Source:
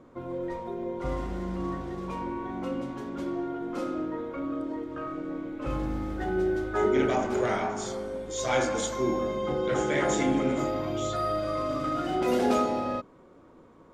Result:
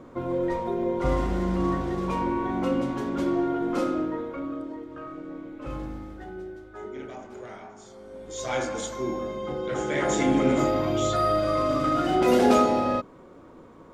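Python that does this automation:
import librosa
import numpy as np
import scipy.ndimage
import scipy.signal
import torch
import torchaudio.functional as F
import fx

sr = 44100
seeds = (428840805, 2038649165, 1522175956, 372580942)

y = fx.gain(x, sr, db=fx.line((3.74, 7.0), (4.79, -3.5), (5.81, -3.5), (6.61, -14.0), (7.9, -14.0), (8.31, -2.5), (9.72, -2.5), (10.54, 5.5)))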